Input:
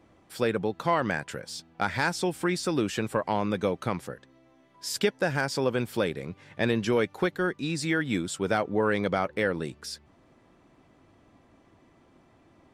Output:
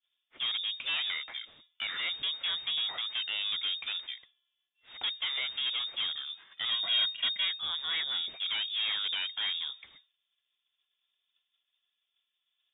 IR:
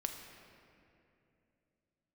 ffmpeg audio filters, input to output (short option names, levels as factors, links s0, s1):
-filter_complex "[0:a]aeval=exprs='(tanh(28.2*val(0)+0.5)-tanh(0.5))/28.2':c=same,asettb=1/sr,asplit=3[s0][s1][s2];[s0]atrim=end=6.714[s3];[s1]atrim=start=6.71:end=7.45,asetpts=PTS-STARTPTS,afade=t=in:d=0.004:c=qsin,afade=t=out:st=0.736:d=0.004:c=qsin,aecho=1:1:2.3:0.73,atrim=end_sample=32634[s4];[s2]atrim=start=7.446[s5];[s3][s4]acrossfade=d=0.004:c1=hsin:c2=qsin[s6];[s6][s5]acrossfade=d=0.004:c1=qsin:c2=hsin,acrossover=split=120|1400|2000[s7][s8][s9][s10];[s10]alimiter=level_in=3.16:limit=0.0631:level=0:latency=1:release=14,volume=0.316[s11];[s7][s8][s9][s11]amix=inputs=4:normalize=0,lowpass=f=3100:t=q:w=0.5098,lowpass=f=3100:t=q:w=0.6013,lowpass=f=3100:t=q:w=0.9,lowpass=f=3100:t=q:w=2.563,afreqshift=-3700,agate=range=0.0224:threshold=0.00398:ratio=3:detection=peak"